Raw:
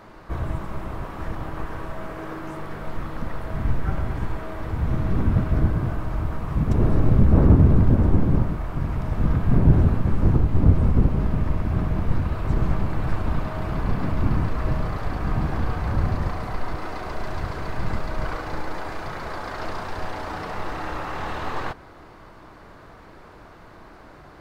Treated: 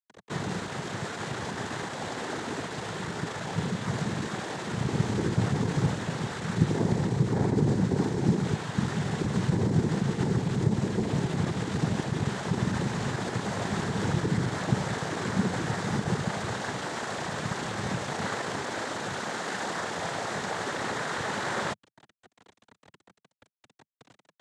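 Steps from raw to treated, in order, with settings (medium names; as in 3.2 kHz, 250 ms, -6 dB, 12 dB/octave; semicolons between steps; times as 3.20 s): word length cut 6-bit, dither none; peak limiter -14 dBFS, peak gain reduction 11 dB; noise-vocoded speech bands 6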